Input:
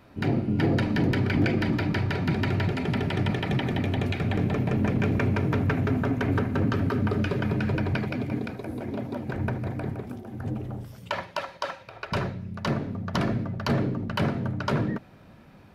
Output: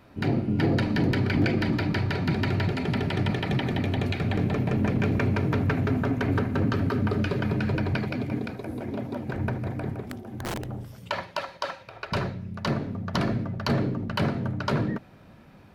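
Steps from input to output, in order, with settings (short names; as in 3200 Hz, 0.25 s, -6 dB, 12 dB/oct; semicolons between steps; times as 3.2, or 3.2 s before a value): dynamic EQ 4300 Hz, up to +5 dB, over -57 dBFS, Q 5.5; 10.11–10.64 wrapped overs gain 26 dB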